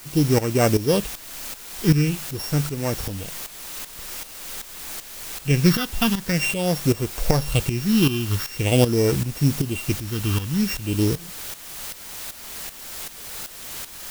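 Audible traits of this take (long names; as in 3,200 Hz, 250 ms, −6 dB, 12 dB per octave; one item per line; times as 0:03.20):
a buzz of ramps at a fixed pitch in blocks of 16 samples
phaser sweep stages 6, 0.46 Hz, lowest notch 550–3,700 Hz
a quantiser's noise floor 6 bits, dither triangular
tremolo saw up 2.6 Hz, depth 75%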